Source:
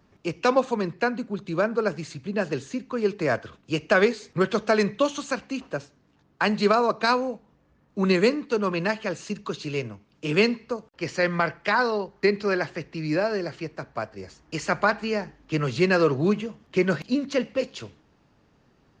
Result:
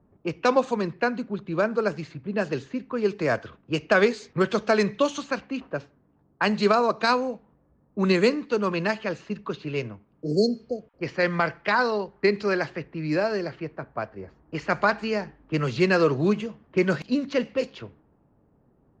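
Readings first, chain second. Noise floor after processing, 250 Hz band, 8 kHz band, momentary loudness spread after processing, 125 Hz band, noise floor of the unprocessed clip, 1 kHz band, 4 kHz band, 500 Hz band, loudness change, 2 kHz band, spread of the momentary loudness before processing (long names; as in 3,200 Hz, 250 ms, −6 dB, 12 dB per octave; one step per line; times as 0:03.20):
−64 dBFS, 0.0 dB, −3.0 dB, 13 LU, 0.0 dB, −63 dBFS, 0.0 dB, −1.0 dB, 0.0 dB, 0.0 dB, −0.5 dB, 13 LU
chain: healed spectral selection 0:10.21–0:10.99, 760–4,100 Hz before
low-pass that shuts in the quiet parts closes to 780 Hz, open at −20 dBFS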